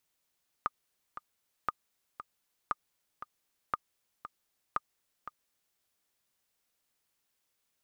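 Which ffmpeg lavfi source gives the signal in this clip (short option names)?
-f lavfi -i "aevalsrc='pow(10,(-16-12*gte(mod(t,2*60/117),60/117))/20)*sin(2*PI*1220*mod(t,60/117))*exp(-6.91*mod(t,60/117)/0.03)':d=5.12:s=44100"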